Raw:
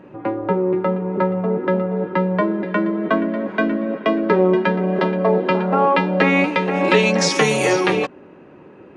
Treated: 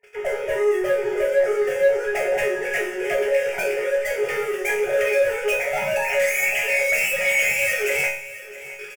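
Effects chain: formants replaced by sine waves; high-pass 490 Hz 6 dB/octave; resonant high shelf 1.8 kHz +8 dB, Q 3; in parallel at +3 dB: compression 10:1, threshold -26 dBFS, peak gain reduction 23 dB; on the sum: waveshaping leveller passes 5; level rider gain up to 11.5 dB; one-sided clip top -9 dBFS, bottom -6 dBFS; static phaser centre 1.1 kHz, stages 6; chord resonator C#3 sus4, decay 0.48 s; saturation -14.5 dBFS, distortion -25 dB; doubling 40 ms -11.5 dB; on a send: feedback delay 663 ms, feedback 46%, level -16.5 dB; on the sum: trim +5.5 dB

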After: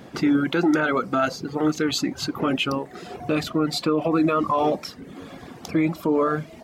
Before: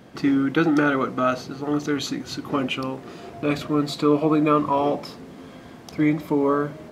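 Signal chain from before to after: reverb removal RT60 0.77 s; peak limiter -17 dBFS, peak gain reduction 9.5 dB; speed mistake 24 fps film run at 25 fps; trim +4.5 dB

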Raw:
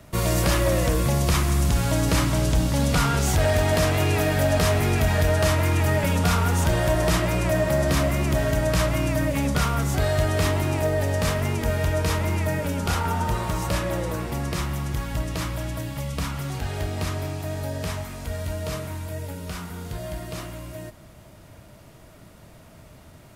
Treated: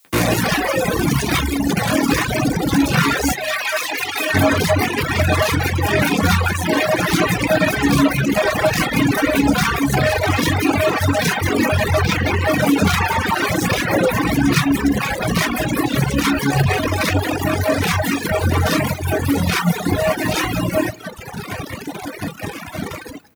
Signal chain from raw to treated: 12.01–12.52 s: median filter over 5 samples; level rider gain up to 7 dB; fuzz box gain 39 dB, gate -39 dBFS; 3.32–4.34 s: high-pass 1.2 kHz 6 dB/octave; delay 182 ms -6.5 dB; reverberation RT60 0.45 s, pre-delay 3 ms, DRR 0 dB; reverb removal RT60 1.9 s; added noise blue -52 dBFS; reverb removal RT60 1.2 s; trim -3.5 dB

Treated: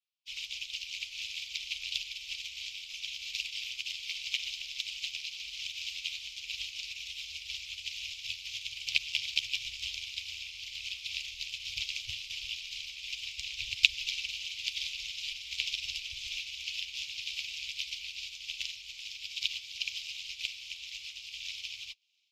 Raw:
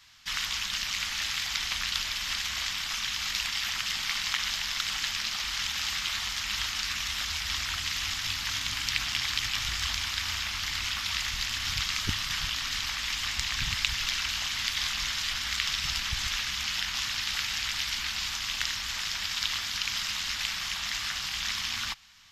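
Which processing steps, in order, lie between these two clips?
FFT filter 120 Hz 0 dB, 180 Hz -21 dB, 310 Hz -25 dB, 550 Hz -16 dB, 910 Hz -14 dB, 1.7 kHz -20 dB, 2.4 kHz +15 dB, 14 kHz +1 dB; on a send: thinning echo 691 ms, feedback 79%, high-pass 890 Hz, level -17.5 dB; on the sum: upward expansion 2.5:1, over -41 dBFS; trim -6 dB

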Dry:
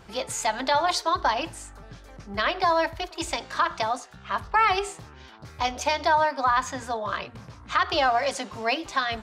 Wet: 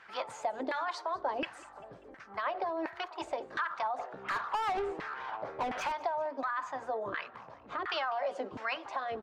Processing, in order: LFO band-pass saw down 1.4 Hz 320–1900 Hz; in parallel at +2.5 dB: compression, threshold -37 dBFS, peak gain reduction 15.5 dB; on the sum: peak limiter -22.5 dBFS, peak gain reduction 9 dB; 3.98–5.92 s: overdrive pedal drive 22 dB, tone 1.5 kHz, clips at -22.5 dBFS; harmonic-percussive split harmonic -5 dB; on a send: frequency-shifting echo 196 ms, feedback 54%, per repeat +33 Hz, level -22.5 dB

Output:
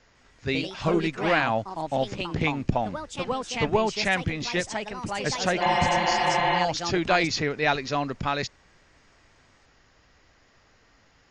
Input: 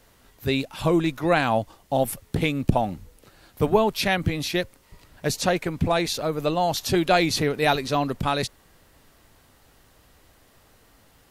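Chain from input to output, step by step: rippled Chebyshev low-pass 7 kHz, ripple 6 dB; ever faster or slower copies 150 ms, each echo +3 st, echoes 2, each echo -6 dB; spectral replace 5.64–6.56 s, 260–4200 Hz after; trim +1.5 dB

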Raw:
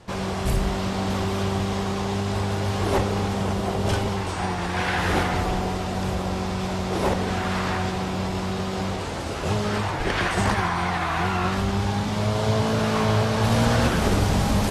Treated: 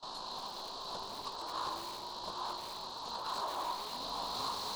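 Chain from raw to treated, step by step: two resonant band-passes 2.5 kHz, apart 1.7 oct; tilt EQ +1.5 dB/octave; time stretch by phase-locked vocoder 0.61×; saturation -30 dBFS, distortion -18 dB; frequency shift -390 Hz; granular stretch 0.53×, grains 38 ms; bit-crushed delay 219 ms, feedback 35%, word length 7-bit, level -7 dB; trim +1 dB

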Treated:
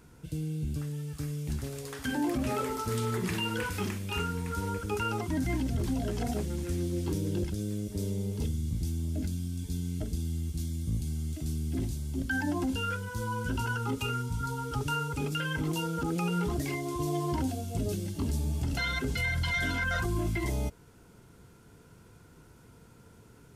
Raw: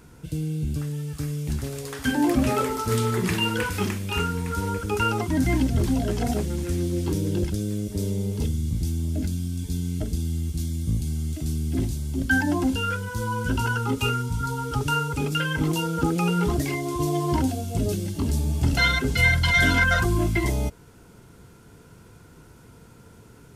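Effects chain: peak limiter -16 dBFS, peak gain reduction 7.5 dB; trim -6 dB

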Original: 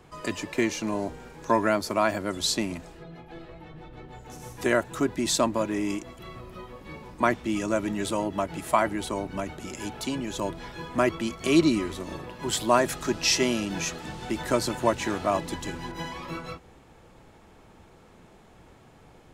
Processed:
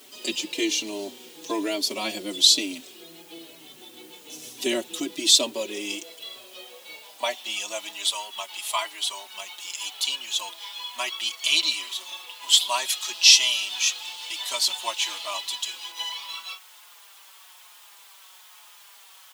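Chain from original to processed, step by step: resonant high shelf 2.2 kHz +13.5 dB, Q 3; added noise white -45 dBFS; high-pass sweep 300 Hz -> 1 kHz, 4.96–8.23 s; endless flanger 4.7 ms -1.1 Hz; trim -4 dB

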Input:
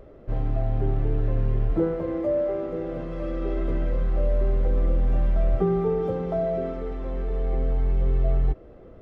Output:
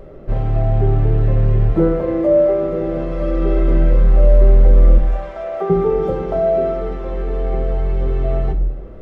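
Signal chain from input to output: 4.98–5.70 s: Chebyshev high-pass 680 Hz, order 2; simulated room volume 620 m³, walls furnished, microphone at 1.1 m; trim +7.5 dB

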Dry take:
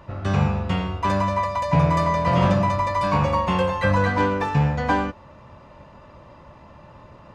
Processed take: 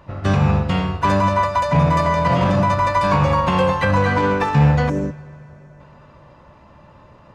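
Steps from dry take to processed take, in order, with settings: harmony voices +7 st -17 dB; peak limiter -14.5 dBFS, peak gain reduction 7.5 dB; spectral selection erased 4.89–5.80 s, 680–5200 Hz; reverberation RT60 4.8 s, pre-delay 3 ms, DRR 13.5 dB; upward expansion 1.5:1, over -37 dBFS; trim +8 dB

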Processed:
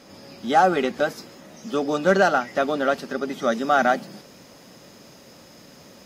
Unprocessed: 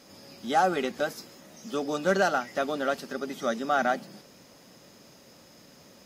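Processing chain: treble shelf 5.1 kHz -8 dB, from 3.52 s -2.5 dB; trim +6.5 dB

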